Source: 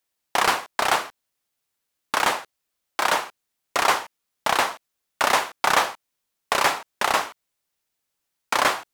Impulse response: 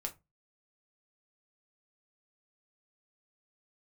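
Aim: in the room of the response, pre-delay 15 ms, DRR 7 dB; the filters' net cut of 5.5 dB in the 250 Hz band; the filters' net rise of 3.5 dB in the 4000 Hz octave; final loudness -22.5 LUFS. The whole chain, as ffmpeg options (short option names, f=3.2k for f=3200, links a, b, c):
-filter_complex "[0:a]equalizer=f=250:t=o:g=-8,equalizer=f=4k:t=o:g=4.5,asplit=2[a][b];[1:a]atrim=start_sample=2205,adelay=15[c];[b][c]afir=irnorm=-1:irlink=0,volume=-6.5dB[d];[a][d]amix=inputs=2:normalize=0,volume=-1dB"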